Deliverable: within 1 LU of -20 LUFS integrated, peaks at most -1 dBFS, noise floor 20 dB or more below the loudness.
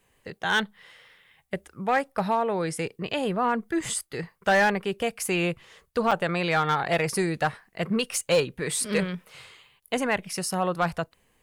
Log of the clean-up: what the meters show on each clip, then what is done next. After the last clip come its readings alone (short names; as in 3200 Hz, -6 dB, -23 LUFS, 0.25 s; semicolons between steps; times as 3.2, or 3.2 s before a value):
clipped 0.4%; flat tops at -15.0 dBFS; dropouts 1; longest dropout 5.1 ms; loudness -26.5 LUFS; peak -15.0 dBFS; loudness target -20.0 LUFS
-> clip repair -15 dBFS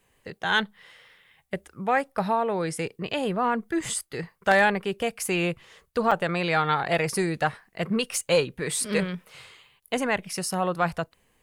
clipped 0.0%; dropouts 1; longest dropout 5.1 ms
-> interpolate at 6.11, 5.1 ms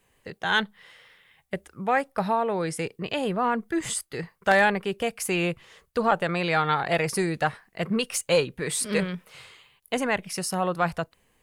dropouts 0; loudness -26.0 LUFS; peak -6.0 dBFS; loudness target -20.0 LUFS
-> gain +6 dB; limiter -1 dBFS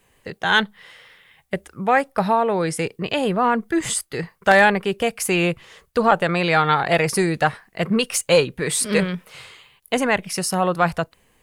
loudness -20.0 LUFS; peak -1.0 dBFS; noise floor -62 dBFS